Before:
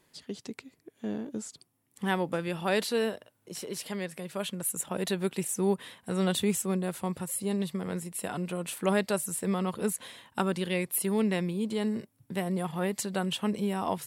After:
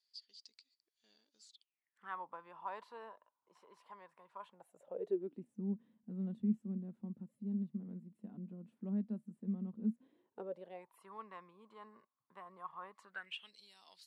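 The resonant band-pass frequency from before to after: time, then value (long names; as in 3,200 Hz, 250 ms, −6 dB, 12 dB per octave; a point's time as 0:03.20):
resonant band-pass, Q 10
0:01.41 4,700 Hz
0:02.21 1,000 Hz
0:04.44 1,000 Hz
0:05.52 220 Hz
0:09.90 220 Hz
0:11.01 1,100 Hz
0:13.04 1,100 Hz
0:13.54 4,400 Hz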